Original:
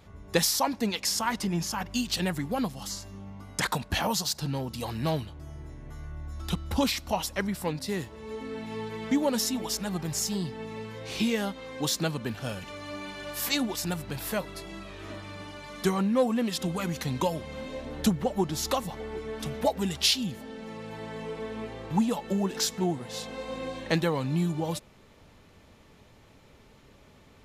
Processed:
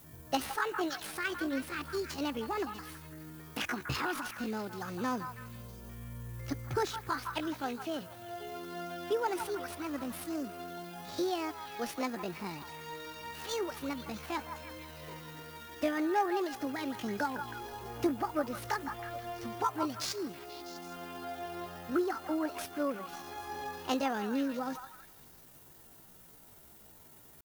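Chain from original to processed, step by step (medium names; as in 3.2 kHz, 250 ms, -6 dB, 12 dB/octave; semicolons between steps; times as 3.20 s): median filter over 9 samples; added noise violet -45 dBFS; pitch shift +8 st; on a send: repeats whose band climbs or falls 162 ms, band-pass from 1.2 kHz, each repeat 0.7 oct, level -5 dB; on the sum: trim -5.5 dB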